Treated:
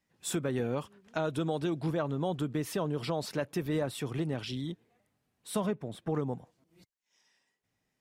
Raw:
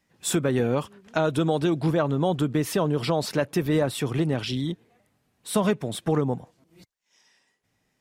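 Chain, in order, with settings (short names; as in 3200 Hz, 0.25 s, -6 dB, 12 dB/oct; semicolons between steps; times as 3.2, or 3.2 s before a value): 5.65–6.14 high shelf 2000 Hz -> 3400 Hz -11 dB; gain -8.5 dB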